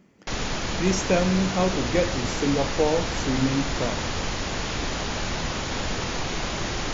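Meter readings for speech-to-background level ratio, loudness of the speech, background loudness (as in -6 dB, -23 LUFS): 3.0 dB, -25.5 LUFS, -28.5 LUFS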